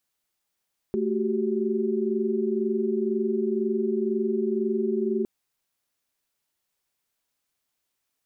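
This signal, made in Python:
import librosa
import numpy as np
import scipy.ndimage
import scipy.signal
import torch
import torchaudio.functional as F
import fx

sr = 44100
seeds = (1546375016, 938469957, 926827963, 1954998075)

y = fx.chord(sr, length_s=4.31, notes=(57, 66, 67), wave='sine', level_db=-27.0)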